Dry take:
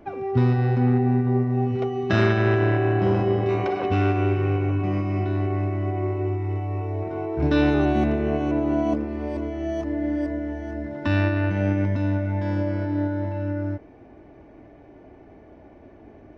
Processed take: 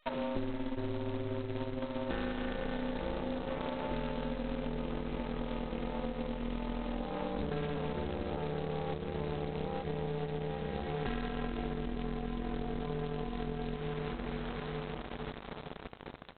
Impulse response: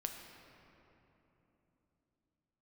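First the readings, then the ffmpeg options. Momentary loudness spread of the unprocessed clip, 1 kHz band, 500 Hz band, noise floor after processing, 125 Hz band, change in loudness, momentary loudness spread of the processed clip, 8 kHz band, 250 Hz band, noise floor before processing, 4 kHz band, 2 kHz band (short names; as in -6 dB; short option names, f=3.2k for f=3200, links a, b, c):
9 LU, -10.5 dB, -12.0 dB, -46 dBFS, -18.0 dB, -14.5 dB, 3 LU, n/a, -13.5 dB, -48 dBFS, -5.5 dB, -13.5 dB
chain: -filter_complex "[0:a]asplit=2[a][b];[b]adelay=864,lowpass=f=1.6k:p=1,volume=-11dB,asplit=2[c][d];[d]adelay=864,lowpass=f=1.6k:p=1,volume=0.52,asplit=2[e][f];[f]adelay=864,lowpass=f=1.6k:p=1,volume=0.52,asplit=2[g][h];[h]adelay=864,lowpass=f=1.6k:p=1,volume=0.52,asplit=2[i][j];[j]adelay=864,lowpass=f=1.6k:p=1,volume=0.52,asplit=2[k][l];[l]adelay=864,lowpass=f=1.6k:p=1,volume=0.52[m];[a][c][e][g][i][k][m]amix=inputs=7:normalize=0,asplit=2[n][o];[o]volume=14dB,asoftclip=hard,volume=-14dB,volume=-7dB[p];[n][p]amix=inputs=2:normalize=0,acrusher=bits=5:mix=0:aa=0.000001,lowpass=2.4k,asplit=2[q][r];[1:a]atrim=start_sample=2205,lowpass=3.4k[s];[r][s]afir=irnorm=-1:irlink=0,volume=-11.5dB[t];[q][t]amix=inputs=2:normalize=0,aeval=exprs='val(0)*sin(2*PI*140*n/s)':c=same,aeval=exprs='0.562*(cos(1*acos(clip(val(0)/0.562,-1,1)))-cos(1*PI/2))+0.00501*(cos(4*acos(clip(val(0)/0.562,-1,1)))-cos(4*PI/2))+0.00794*(cos(5*acos(clip(val(0)/0.562,-1,1)))-cos(5*PI/2))+0.00501*(cos(7*acos(clip(val(0)/0.562,-1,1)))-cos(7*PI/2))+0.0447*(cos(8*acos(clip(val(0)/0.562,-1,1)))-cos(8*PI/2))':c=same,acompressor=threshold=-28dB:ratio=20,volume=-3dB" -ar 8000 -c:a adpcm_g726 -b:a 16k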